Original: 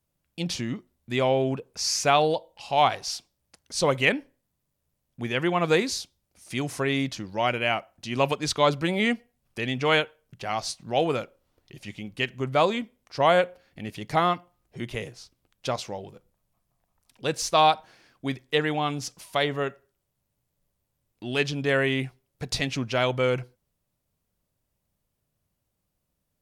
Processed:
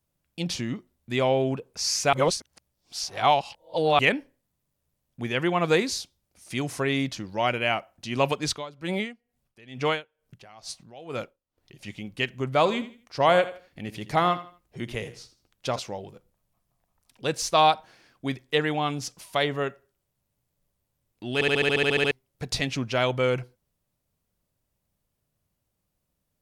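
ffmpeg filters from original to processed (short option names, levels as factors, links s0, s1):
-filter_complex "[0:a]asettb=1/sr,asplit=3[s0][s1][s2];[s0]atrim=end=8.494[s3];[s1]atrim=start=8.49:end=11.79,asetpts=PTS-STARTPTS,afade=t=in:d=0.004:c=qsin,afade=t=out:st=3.296:d=0.004:c=qsin,aeval=exprs='val(0)*pow(10,-22*(0.5-0.5*cos(2*PI*2.2*n/s))/20)':c=same[s4];[s2]atrim=start=11.786[s5];[s3][s4]acrossfade=d=0.004:c1=hsin:c2=qsin[s6];[s6][s5]acrossfade=d=0.004:c1=qsin:c2=hsin,asettb=1/sr,asplit=3[s7][s8][s9];[s7]atrim=end=12.574[s10];[s8]atrim=start=12.57:end=15.79,asetpts=PTS-STARTPTS,afade=t=in:d=0.004:c=qsin,afade=t=out:st=3.216:d=0.004:c=qsin,aecho=1:1:81|162|243:0.188|0.0546|0.0158,atrim=end_sample=142002[s11];[s9]atrim=start=15.786[s12];[s10][s11]acrossfade=d=0.004:c1=hsin:c2=qsin[s13];[s13][s12]acrossfade=d=0.004:c1=qsin:c2=hsin,asplit=14[s14][s15][s16][s17][s18][s19][s20][s21][s22][s23][s24][s25][s26][s27];[s14]atrim=end=2.132[s28];[s15]atrim=start=2.128:end=3.992,asetpts=PTS-STARTPTS,areverse[s29];[s16]atrim=start=3.988:end=21.412[s30];[s17]atrim=start=21.338:end=21.412[s31];[s18]atrim=start=21.338:end=21.412[s32];[s19]atrim=start=21.338:end=21.412[s33];[s20]atrim=start=21.338:end=21.412[s34];[s21]atrim=start=21.338:end=21.412[s35];[s22]atrim=start=21.338:end=21.412[s36];[s23]atrim=start=21.338:end=21.412[s37];[s24]atrim=start=21.338:end=21.412[s38];[s25]atrim=start=21.338:end=21.412[s39];[s26]atrim=start=21.338:end=21.412[s40];[s27]atrim=start=22.108[s41];[s28][s29]acrossfade=d=0.004:c1=hsin:c2=hsin[s42];[s42][s30]acrossfade=d=0.004:c1=hsin:c2=hsin[s43];[s43][s31]acrossfade=d=0.004:c1=hsin:c2=hsin[s44];[s44][s32]acrossfade=d=0.004:c1=hsin:c2=hsin[s45];[s45][s33]acrossfade=d=0.004:c1=hsin:c2=hsin[s46];[s46][s34]acrossfade=d=0.004:c1=hsin:c2=hsin[s47];[s47][s35]acrossfade=d=0.004:c1=hsin:c2=hsin[s48];[s48][s36]acrossfade=d=0.004:c1=hsin:c2=hsin[s49];[s49][s37]acrossfade=d=0.004:c1=hsin:c2=hsin[s50];[s50][s38]acrossfade=d=0.004:c1=hsin:c2=hsin[s51];[s51][s39]acrossfade=d=0.004:c1=hsin:c2=hsin[s52];[s52][s40]acrossfade=d=0.004:c1=hsin:c2=hsin[s53];[s53][s41]acrossfade=d=0.004:c1=hsin:c2=hsin"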